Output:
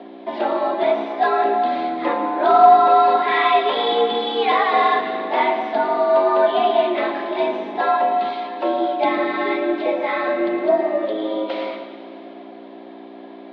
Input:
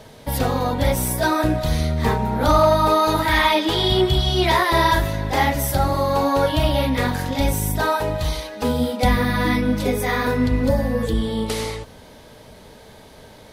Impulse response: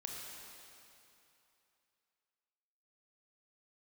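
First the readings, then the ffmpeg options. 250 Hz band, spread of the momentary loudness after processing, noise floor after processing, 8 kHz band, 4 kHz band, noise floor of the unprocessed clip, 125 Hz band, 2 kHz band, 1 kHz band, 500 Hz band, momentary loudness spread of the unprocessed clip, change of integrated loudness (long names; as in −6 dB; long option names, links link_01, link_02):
−4.0 dB, 10 LU, −39 dBFS, below −35 dB, −4.5 dB, −45 dBFS, below −25 dB, −1.0 dB, +5.0 dB, +3.0 dB, 7 LU, +1.0 dB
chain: -filter_complex "[0:a]asplit=2[link_01][link_02];[1:a]atrim=start_sample=2205,adelay=112[link_03];[link_02][link_03]afir=irnorm=-1:irlink=0,volume=-7dB[link_04];[link_01][link_04]amix=inputs=2:normalize=0,aeval=exprs='val(0)+0.0398*(sin(2*PI*60*n/s)+sin(2*PI*2*60*n/s)/2+sin(2*PI*3*60*n/s)/3+sin(2*PI*4*60*n/s)/4+sin(2*PI*5*60*n/s)/5)':channel_layout=same,equalizer=frequency=600:width_type=o:width=0.57:gain=8.5,highpass=frequency=170:width_type=q:width=0.5412,highpass=frequency=170:width_type=q:width=1.307,lowpass=frequency=3500:width_type=q:width=0.5176,lowpass=frequency=3500:width_type=q:width=0.7071,lowpass=frequency=3500:width_type=q:width=1.932,afreqshift=95,volume=-2dB"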